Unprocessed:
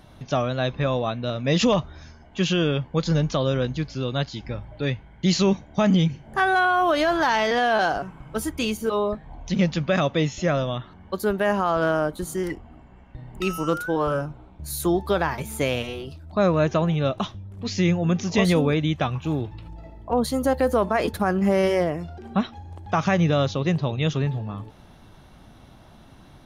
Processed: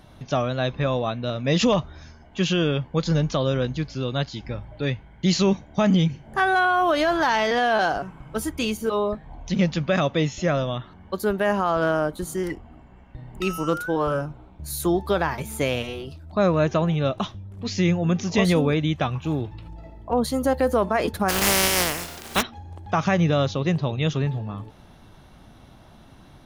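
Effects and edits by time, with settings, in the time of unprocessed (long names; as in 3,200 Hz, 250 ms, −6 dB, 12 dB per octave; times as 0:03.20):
0:21.28–0:22.41: compressing power law on the bin magnitudes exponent 0.29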